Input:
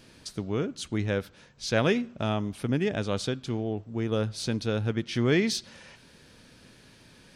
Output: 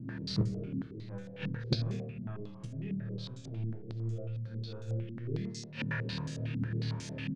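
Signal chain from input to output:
high-pass filter 54 Hz 6 dB per octave
parametric band 130 Hz +12.5 dB 1.6 octaves
harmonic and percussive parts rebalanced percussive −8 dB
in parallel at −1 dB: brickwall limiter −21 dBFS, peak gain reduction 11.5 dB
on the sum: transient designer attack −6 dB, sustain +6 dB
rotating-speaker cabinet horn 0.8 Hz
on a send: flutter between parallel walls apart 4.5 metres, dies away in 0.68 s
on the sum: floating-point word with a short mantissa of 4 bits
gate with flip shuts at −19 dBFS, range −26 dB
double-tracking delay 15 ms −7 dB
rectangular room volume 490 cubic metres, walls mixed, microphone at 0.59 metres
low-pass on a step sequencer 11 Hz 250–6,900 Hz

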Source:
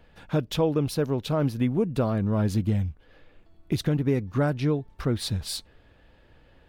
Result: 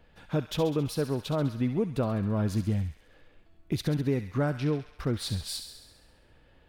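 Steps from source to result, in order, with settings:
0:01.34–0:01.75: high-shelf EQ 4,700 Hz −10 dB
on a send: delay with a high-pass on its return 67 ms, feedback 65%, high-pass 1,400 Hz, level −8 dB
on the sum: level −3.5 dB

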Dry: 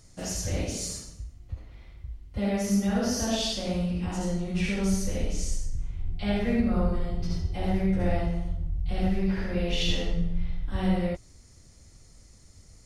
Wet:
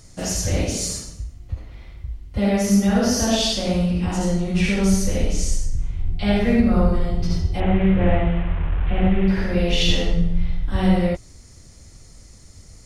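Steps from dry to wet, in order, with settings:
0:07.60–0:09.28: linear delta modulator 16 kbit/s, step −36 dBFS
level +8 dB

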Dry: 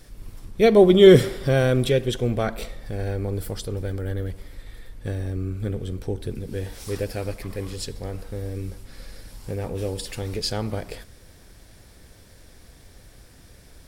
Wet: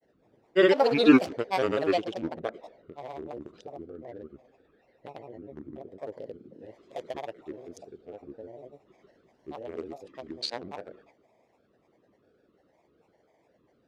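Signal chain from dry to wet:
adaptive Wiener filter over 41 samples
band-pass filter 460–6,500 Hz
granular cloud, pitch spread up and down by 7 semitones

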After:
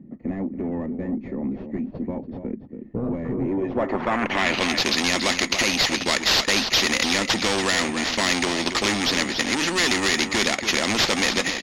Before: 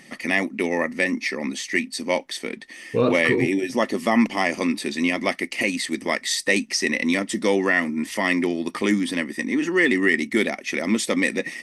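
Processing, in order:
noise gate −30 dBFS, range −12 dB
in parallel at +1.5 dB: brickwall limiter −13 dBFS, peak gain reduction 7 dB
on the sum: decimation without filtering 5×
soft clipping −13.5 dBFS, distortion −11 dB
low-pass filter sweep 230 Hz → 4,500 Hz, 0:03.35–0:04.77
on a send: single-tap delay 283 ms −13.5 dB
on the sum: every bin compressed towards the loudest bin 2 to 1

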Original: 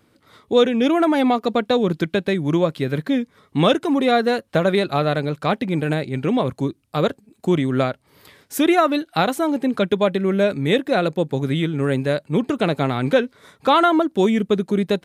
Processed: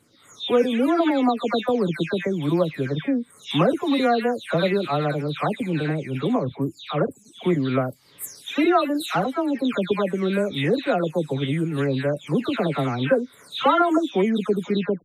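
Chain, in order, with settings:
every frequency bin delayed by itself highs early, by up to 325 ms
level −2.5 dB

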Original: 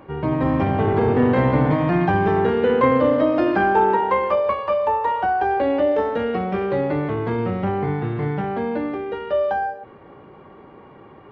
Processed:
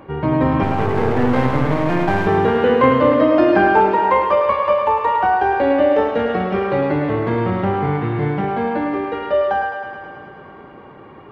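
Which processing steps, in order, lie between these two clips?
0:00.63–0:02.27: gain on one half-wave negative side −12 dB
feedback echo with a high-pass in the loop 106 ms, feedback 76%, high-pass 300 Hz, level −7 dB
level +3.5 dB

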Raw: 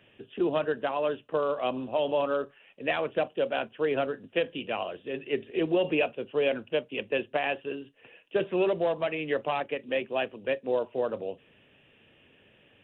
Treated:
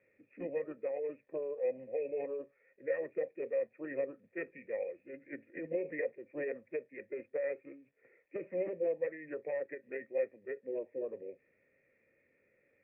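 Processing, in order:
formants moved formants −4 semitones
surface crackle 400 per second −52 dBFS
formant resonators in series e

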